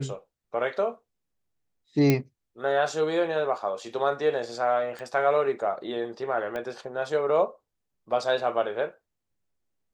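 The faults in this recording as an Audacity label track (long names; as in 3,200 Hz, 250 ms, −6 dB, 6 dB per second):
2.100000	2.100000	click −8 dBFS
4.990000	4.990000	click −26 dBFS
6.560000	6.560000	click −21 dBFS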